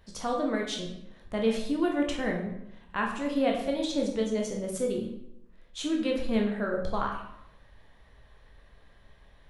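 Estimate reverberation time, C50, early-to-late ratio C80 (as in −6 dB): 0.80 s, 5.5 dB, 8.0 dB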